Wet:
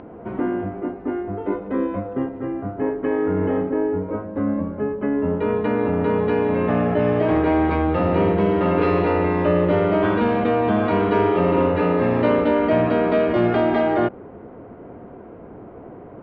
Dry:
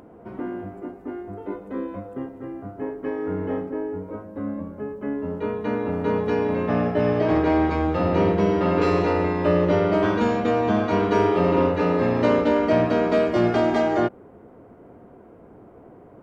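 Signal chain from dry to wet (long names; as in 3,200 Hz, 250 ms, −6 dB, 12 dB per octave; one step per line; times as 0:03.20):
low-pass filter 3,400 Hz 24 dB per octave
in parallel at −2.5 dB: compressor whose output falls as the input rises −28 dBFS, ratio −1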